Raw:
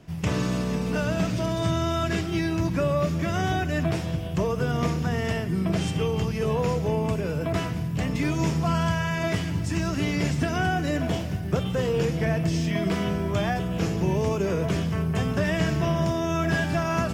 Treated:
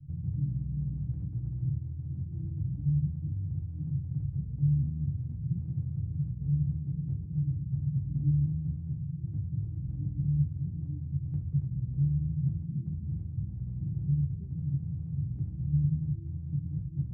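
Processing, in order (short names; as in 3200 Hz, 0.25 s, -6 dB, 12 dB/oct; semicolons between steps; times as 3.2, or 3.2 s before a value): inverse Chebyshev low-pass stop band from 570 Hz, stop band 80 dB; reverb removal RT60 1 s; in parallel at +3 dB: negative-ratio compressor -40 dBFS, ratio -1; on the sum: limiter -31 dBFS, peak gain reduction 9 dB; reverb, pre-delay 3 ms, DRR -1 dB; gain +3 dB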